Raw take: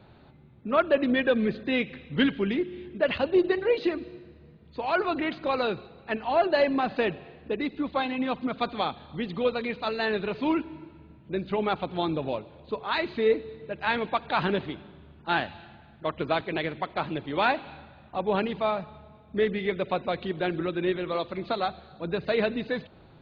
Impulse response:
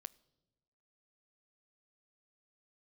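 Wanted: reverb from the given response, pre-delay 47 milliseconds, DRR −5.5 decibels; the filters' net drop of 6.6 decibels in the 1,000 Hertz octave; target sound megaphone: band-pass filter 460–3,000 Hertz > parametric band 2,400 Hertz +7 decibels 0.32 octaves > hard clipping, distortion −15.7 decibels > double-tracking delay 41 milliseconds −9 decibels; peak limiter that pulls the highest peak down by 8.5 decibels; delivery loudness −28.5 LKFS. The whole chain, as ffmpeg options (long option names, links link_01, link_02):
-filter_complex "[0:a]equalizer=frequency=1000:width_type=o:gain=-9,alimiter=limit=-21dB:level=0:latency=1,asplit=2[link_01][link_02];[1:a]atrim=start_sample=2205,adelay=47[link_03];[link_02][link_03]afir=irnorm=-1:irlink=0,volume=11.5dB[link_04];[link_01][link_04]amix=inputs=2:normalize=0,highpass=460,lowpass=3000,equalizer=frequency=2400:width_type=o:width=0.32:gain=7,asoftclip=type=hard:threshold=-21dB,asplit=2[link_05][link_06];[link_06]adelay=41,volume=-9dB[link_07];[link_05][link_07]amix=inputs=2:normalize=0"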